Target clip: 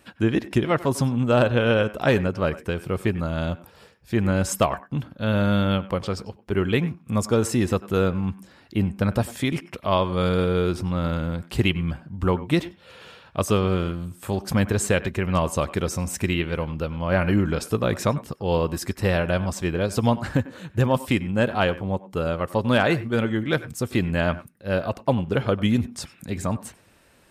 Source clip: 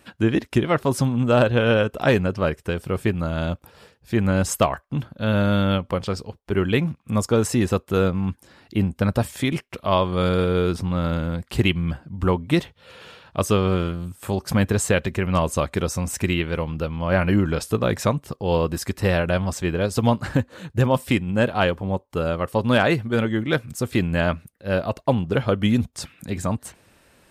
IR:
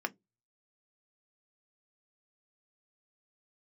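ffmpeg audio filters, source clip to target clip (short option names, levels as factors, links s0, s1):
-filter_complex "[0:a]asplit=2[s0][s1];[1:a]atrim=start_sample=2205,adelay=95[s2];[s1][s2]afir=irnorm=-1:irlink=0,volume=0.1[s3];[s0][s3]amix=inputs=2:normalize=0,volume=0.841"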